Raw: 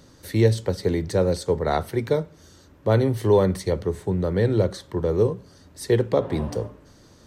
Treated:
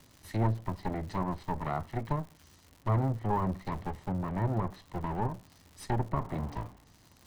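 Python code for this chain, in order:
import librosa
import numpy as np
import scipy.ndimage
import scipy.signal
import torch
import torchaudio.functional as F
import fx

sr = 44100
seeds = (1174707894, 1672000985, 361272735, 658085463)

y = fx.lower_of_two(x, sr, delay_ms=1.0)
y = fx.env_lowpass_down(y, sr, base_hz=1300.0, full_db=-20.0)
y = fx.dmg_crackle(y, sr, seeds[0], per_s=180.0, level_db=-36.0)
y = y * librosa.db_to_amplitude(-8.0)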